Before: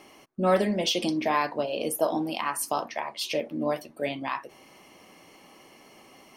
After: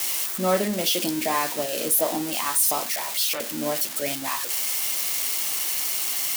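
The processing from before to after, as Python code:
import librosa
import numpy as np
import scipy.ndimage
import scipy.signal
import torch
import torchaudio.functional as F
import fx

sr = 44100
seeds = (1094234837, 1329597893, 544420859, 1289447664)

y = x + 0.5 * 10.0 ** (-17.0 / 20.0) * np.diff(np.sign(x), prepend=np.sign(x[:1]))
y = fx.transformer_sat(y, sr, knee_hz=2800.0, at=(2.93, 3.4))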